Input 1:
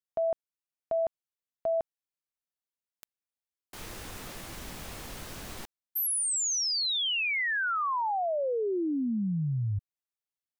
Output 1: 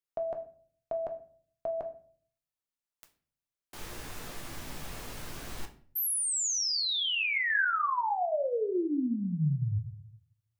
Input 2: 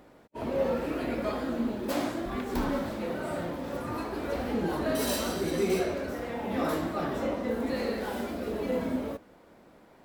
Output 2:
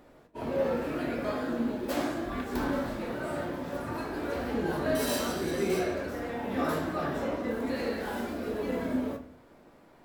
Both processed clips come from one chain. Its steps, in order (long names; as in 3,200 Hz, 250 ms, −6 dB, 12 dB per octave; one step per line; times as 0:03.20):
dynamic equaliser 1,600 Hz, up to +4 dB, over −54 dBFS, Q 5.8
rectangular room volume 52 cubic metres, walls mixed, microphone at 0.34 metres
level −2 dB